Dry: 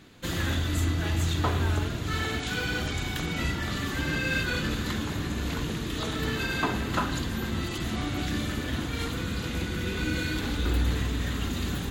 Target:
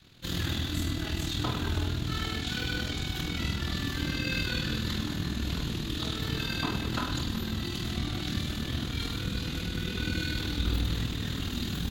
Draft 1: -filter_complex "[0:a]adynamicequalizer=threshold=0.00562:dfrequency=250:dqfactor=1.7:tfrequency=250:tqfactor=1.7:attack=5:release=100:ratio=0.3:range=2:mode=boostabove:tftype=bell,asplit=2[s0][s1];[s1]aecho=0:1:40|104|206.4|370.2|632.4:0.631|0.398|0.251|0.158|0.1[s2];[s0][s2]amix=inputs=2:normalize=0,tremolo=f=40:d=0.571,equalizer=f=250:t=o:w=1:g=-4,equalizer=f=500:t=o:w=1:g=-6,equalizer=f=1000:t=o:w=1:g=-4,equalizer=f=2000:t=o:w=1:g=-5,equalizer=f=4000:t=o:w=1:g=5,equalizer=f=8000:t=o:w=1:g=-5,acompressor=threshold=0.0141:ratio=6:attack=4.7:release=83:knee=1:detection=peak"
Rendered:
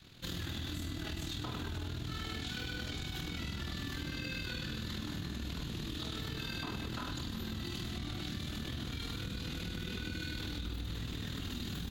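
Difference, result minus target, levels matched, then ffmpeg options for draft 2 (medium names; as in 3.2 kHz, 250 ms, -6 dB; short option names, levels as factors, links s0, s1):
compression: peak gain reduction +14.5 dB
-filter_complex "[0:a]adynamicequalizer=threshold=0.00562:dfrequency=250:dqfactor=1.7:tfrequency=250:tqfactor=1.7:attack=5:release=100:ratio=0.3:range=2:mode=boostabove:tftype=bell,asplit=2[s0][s1];[s1]aecho=0:1:40|104|206.4|370.2|632.4:0.631|0.398|0.251|0.158|0.1[s2];[s0][s2]amix=inputs=2:normalize=0,tremolo=f=40:d=0.571,equalizer=f=250:t=o:w=1:g=-4,equalizer=f=500:t=o:w=1:g=-6,equalizer=f=1000:t=o:w=1:g=-4,equalizer=f=2000:t=o:w=1:g=-5,equalizer=f=4000:t=o:w=1:g=5,equalizer=f=8000:t=o:w=1:g=-5"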